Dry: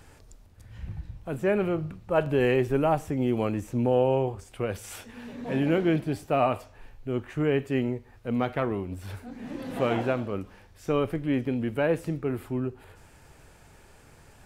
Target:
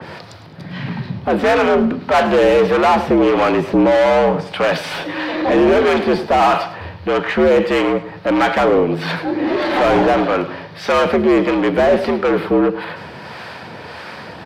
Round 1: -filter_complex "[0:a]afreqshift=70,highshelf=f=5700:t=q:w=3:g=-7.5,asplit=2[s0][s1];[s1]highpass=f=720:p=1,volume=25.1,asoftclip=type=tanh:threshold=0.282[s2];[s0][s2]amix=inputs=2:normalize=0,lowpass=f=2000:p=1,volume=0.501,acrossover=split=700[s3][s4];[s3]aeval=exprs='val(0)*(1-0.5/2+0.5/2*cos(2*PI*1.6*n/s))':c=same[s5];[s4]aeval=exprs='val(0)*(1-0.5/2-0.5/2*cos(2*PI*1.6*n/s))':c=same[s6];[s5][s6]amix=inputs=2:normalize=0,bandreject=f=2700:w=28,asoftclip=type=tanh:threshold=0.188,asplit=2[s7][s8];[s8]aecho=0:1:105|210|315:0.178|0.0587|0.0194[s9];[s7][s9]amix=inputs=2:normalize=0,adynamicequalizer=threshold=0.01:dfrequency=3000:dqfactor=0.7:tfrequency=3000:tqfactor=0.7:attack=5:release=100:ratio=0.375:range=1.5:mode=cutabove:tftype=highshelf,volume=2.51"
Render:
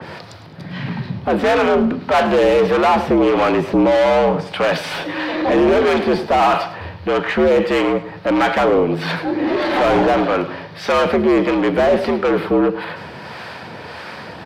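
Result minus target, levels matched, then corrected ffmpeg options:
saturation: distortion +13 dB
-filter_complex "[0:a]afreqshift=70,highshelf=f=5700:t=q:w=3:g=-7.5,asplit=2[s0][s1];[s1]highpass=f=720:p=1,volume=25.1,asoftclip=type=tanh:threshold=0.282[s2];[s0][s2]amix=inputs=2:normalize=0,lowpass=f=2000:p=1,volume=0.501,acrossover=split=700[s3][s4];[s3]aeval=exprs='val(0)*(1-0.5/2+0.5/2*cos(2*PI*1.6*n/s))':c=same[s5];[s4]aeval=exprs='val(0)*(1-0.5/2-0.5/2*cos(2*PI*1.6*n/s))':c=same[s6];[s5][s6]amix=inputs=2:normalize=0,bandreject=f=2700:w=28,asoftclip=type=tanh:threshold=0.447,asplit=2[s7][s8];[s8]aecho=0:1:105|210|315:0.178|0.0587|0.0194[s9];[s7][s9]amix=inputs=2:normalize=0,adynamicequalizer=threshold=0.01:dfrequency=3000:dqfactor=0.7:tfrequency=3000:tqfactor=0.7:attack=5:release=100:ratio=0.375:range=1.5:mode=cutabove:tftype=highshelf,volume=2.51"

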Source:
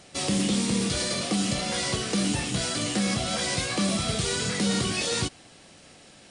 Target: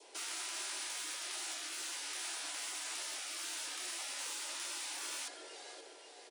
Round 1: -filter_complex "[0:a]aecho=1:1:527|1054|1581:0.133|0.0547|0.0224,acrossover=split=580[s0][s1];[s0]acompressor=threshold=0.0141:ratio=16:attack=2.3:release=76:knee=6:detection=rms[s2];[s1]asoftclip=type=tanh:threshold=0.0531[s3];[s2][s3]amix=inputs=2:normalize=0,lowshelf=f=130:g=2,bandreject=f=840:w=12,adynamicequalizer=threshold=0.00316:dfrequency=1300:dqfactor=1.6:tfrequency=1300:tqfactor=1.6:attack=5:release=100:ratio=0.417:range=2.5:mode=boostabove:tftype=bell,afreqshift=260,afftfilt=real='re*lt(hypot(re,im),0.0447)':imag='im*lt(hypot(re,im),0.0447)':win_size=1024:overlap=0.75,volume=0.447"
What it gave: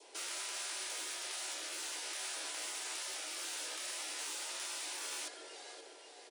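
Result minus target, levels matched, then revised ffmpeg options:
compression: peak gain reduction +7 dB
-filter_complex "[0:a]aecho=1:1:527|1054|1581:0.133|0.0547|0.0224,acrossover=split=580[s0][s1];[s0]acompressor=threshold=0.0335:ratio=16:attack=2.3:release=76:knee=6:detection=rms[s2];[s1]asoftclip=type=tanh:threshold=0.0531[s3];[s2][s3]amix=inputs=2:normalize=0,lowshelf=f=130:g=2,bandreject=f=840:w=12,adynamicequalizer=threshold=0.00316:dfrequency=1300:dqfactor=1.6:tfrequency=1300:tqfactor=1.6:attack=5:release=100:ratio=0.417:range=2.5:mode=boostabove:tftype=bell,afreqshift=260,afftfilt=real='re*lt(hypot(re,im),0.0447)':imag='im*lt(hypot(re,im),0.0447)':win_size=1024:overlap=0.75,volume=0.447"

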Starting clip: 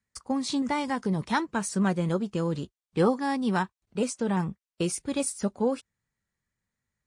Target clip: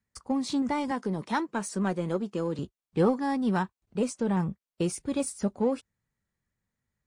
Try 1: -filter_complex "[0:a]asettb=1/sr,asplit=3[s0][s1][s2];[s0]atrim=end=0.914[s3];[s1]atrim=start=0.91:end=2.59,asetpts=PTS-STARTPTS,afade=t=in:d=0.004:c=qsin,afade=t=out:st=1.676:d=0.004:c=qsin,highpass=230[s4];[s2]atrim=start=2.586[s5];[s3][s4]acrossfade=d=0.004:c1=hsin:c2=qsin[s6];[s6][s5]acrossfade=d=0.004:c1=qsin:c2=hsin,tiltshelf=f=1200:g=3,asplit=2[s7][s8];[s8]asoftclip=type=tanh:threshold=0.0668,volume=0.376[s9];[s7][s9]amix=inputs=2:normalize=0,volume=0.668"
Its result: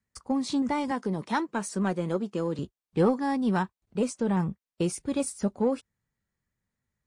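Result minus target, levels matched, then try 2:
saturation: distortion -5 dB
-filter_complex "[0:a]asettb=1/sr,asplit=3[s0][s1][s2];[s0]atrim=end=0.914[s3];[s1]atrim=start=0.91:end=2.59,asetpts=PTS-STARTPTS,afade=t=in:d=0.004:c=qsin,afade=t=out:st=1.676:d=0.004:c=qsin,highpass=230[s4];[s2]atrim=start=2.586[s5];[s3][s4]acrossfade=d=0.004:c1=hsin:c2=qsin[s6];[s6][s5]acrossfade=d=0.004:c1=qsin:c2=hsin,tiltshelf=f=1200:g=3,asplit=2[s7][s8];[s8]asoftclip=type=tanh:threshold=0.0282,volume=0.376[s9];[s7][s9]amix=inputs=2:normalize=0,volume=0.668"

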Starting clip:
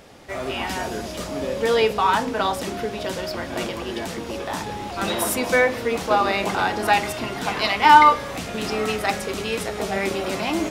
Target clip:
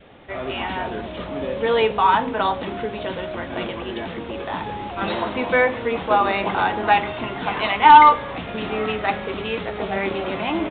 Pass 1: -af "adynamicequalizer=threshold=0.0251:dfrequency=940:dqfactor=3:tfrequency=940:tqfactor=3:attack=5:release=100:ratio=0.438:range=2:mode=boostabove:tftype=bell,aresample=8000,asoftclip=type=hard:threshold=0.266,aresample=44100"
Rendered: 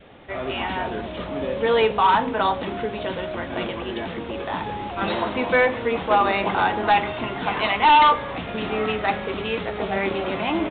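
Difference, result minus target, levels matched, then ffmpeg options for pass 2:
hard clipper: distortion +13 dB
-af "adynamicequalizer=threshold=0.0251:dfrequency=940:dqfactor=3:tfrequency=940:tqfactor=3:attack=5:release=100:ratio=0.438:range=2:mode=boostabove:tftype=bell,aresample=8000,asoftclip=type=hard:threshold=0.708,aresample=44100"

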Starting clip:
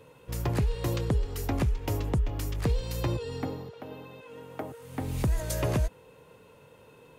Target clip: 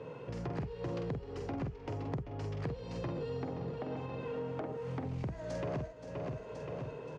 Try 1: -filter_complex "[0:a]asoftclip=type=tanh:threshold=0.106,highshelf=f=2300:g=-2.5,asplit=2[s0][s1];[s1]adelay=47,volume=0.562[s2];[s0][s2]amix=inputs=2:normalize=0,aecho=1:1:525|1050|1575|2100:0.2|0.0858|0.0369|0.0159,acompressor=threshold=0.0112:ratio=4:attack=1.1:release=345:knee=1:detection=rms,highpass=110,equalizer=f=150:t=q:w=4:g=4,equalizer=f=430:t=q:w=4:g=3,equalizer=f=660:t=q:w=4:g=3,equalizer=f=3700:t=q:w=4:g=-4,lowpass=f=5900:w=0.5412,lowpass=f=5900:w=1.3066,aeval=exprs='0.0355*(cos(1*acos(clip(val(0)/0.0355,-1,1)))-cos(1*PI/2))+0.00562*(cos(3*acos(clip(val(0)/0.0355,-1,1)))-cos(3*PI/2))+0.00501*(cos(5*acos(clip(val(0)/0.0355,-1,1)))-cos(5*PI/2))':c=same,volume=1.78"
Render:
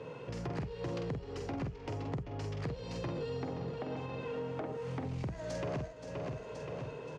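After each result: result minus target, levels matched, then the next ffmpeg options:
saturation: distortion +15 dB; 4 kHz band +4.0 dB
-filter_complex "[0:a]asoftclip=type=tanh:threshold=0.282,highshelf=f=2300:g=-2.5,asplit=2[s0][s1];[s1]adelay=47,volume=0.562[s2];[s0][s2]amix=inputs=2:normalize=0,aecho=1:1:525|1050|1575|2100:0.2|0.0858|0.0369|0.0159,acompressor=threshold=0.0112:ratio=4:attack=1.1:release=345:knee=1:detection=rms,highpass=110,equalizer=f=150:t=q:w=4:g=4,equalizer=f=430:t=q:w=4:g=3,equalizer=f=660:t=q:w=4:g=3,equalizer=f=3700:t=q:w=4:g=-4,lowpass=f=5900:w=0.5412,lowpass=f=5900:w=1.3066,aeval=exprs='0.0355*(cos(1*acos(clip(val(0)/0.0355,-1,1)))-cos(1*PI/2))+0.00562*(cos(3*acos(clip(val(0)/0.0355,-1,1)))-cos(3*PI/2))+0.00501*(cos(5*acos(clip(val(0)/0.0355,-1,1)))-cos(5*PI/2))':c=same,volume=1.78"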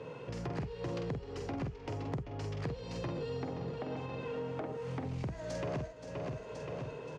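4 kHz band +4.0 dB
-filter_complex "[0:a]asoftclip=type=tanh:threshold=0.282,highshelf=f=2300:g=-9,asplit=2[s0][s1];[s1]adelay=47,volume=0.562[s2];[s0][s2]amix=inputs=2:normalize=0,aecho=1:1:525|1050|1575|2100:0.2|0.0858|0.0369|0.0159,acompressor=threshold=0.0112:ratio=4:attack=1.1:release=345:knee=1:detection=rms,highpass=110,equalizer=f=150:t=q:w=4:g=4,equalizer=f=430:t=q:w=4:g=3,equalizer=f=660:t=q:w=4:g=3,equalizer=f=3700:t=q:w=4:g=-4,lowpass=f=5900:w=0.5412,lowpass=f=5900:w=1.3066,aeval=exprs='0.0355*(cos(1*acos(clip(val(0)/0.0355,-1,1)))-cos(1*PI/2))+0.00562*(cos(3*acos(clip(val(0)/0.0355,-1,1)))-cos(3*PI/2))+0.00501*(cos(5*acos(clip(val(0)/0.0355,-1,1)))-cos(5*PI/2))':c=same,volume=1.78"

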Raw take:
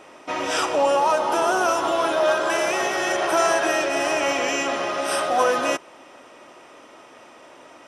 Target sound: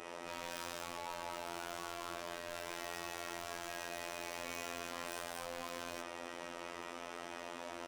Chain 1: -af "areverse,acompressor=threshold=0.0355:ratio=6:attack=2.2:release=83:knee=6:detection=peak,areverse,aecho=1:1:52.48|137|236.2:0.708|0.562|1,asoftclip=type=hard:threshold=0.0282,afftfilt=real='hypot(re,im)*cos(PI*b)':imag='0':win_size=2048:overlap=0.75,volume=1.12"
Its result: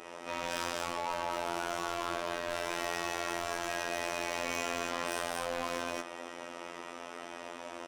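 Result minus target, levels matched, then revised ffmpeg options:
hard clipper: distortion -4 dB
-af "areverse,acompressor=threshold=0.0355:ratio=6:attack=2.2:release=83:knee=6:detection=peak,areverse,aecho=1:1:52.48|137|236.2:0.708|0.562|1,asoftclip=type=hard:threshold=0.00891,afftfilt=real='hypot(re,im)*cos(PI*b)':imag='0':win_size=2048:overlap=0.75,volume=1.12"

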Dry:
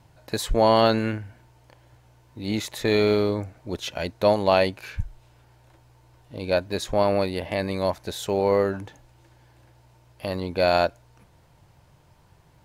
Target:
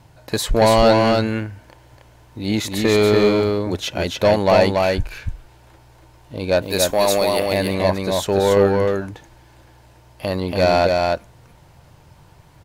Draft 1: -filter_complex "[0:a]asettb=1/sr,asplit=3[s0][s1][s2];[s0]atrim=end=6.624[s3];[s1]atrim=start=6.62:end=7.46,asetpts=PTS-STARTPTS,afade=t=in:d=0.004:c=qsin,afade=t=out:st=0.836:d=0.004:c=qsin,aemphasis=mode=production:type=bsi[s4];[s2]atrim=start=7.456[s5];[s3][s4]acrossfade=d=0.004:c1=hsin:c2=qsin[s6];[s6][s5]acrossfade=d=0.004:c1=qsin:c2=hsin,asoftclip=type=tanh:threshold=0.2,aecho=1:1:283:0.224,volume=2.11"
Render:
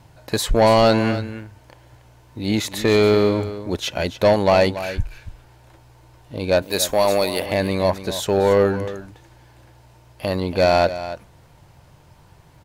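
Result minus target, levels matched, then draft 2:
echo-to-direct -10 dB
-filter_complex "[0:a]asettb=1/sr,asplit=3[s0][s1][s2];[s0]atrim=end=6.624[s3];[s1]atrim=start=6.62:end=7.46,asetpts=PTS-STARTPTS,afade=t=in:d=0.004:c=qsin,afade=t=out:st=0.836:d=0.004:c=qsin,aemphasis=mode=production:type=bsi[s4];[s2]atrim=start=7.456[s5];[s3][s4]acrossfade=d=0.004:c1=hsin:c2=qsin[s6];[s6][s5]acrossfade=d=0.004:c1=qsin:c2=hsin,asoftclip=type=tanh:threshold=0.2,aecho=1:1:283:0.708,volume=2.11"

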